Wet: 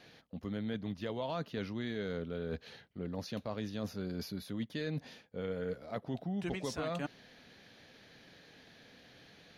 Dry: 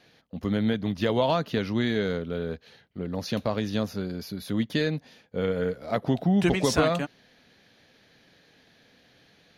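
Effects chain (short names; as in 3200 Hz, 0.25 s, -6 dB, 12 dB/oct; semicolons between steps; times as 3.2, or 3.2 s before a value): high shelf 9500 Hz -3.5 dB; reverse; compressor 5:1, threshold -37 dBFS, peak gain reduction 18 dB; reverse; gain +1 dB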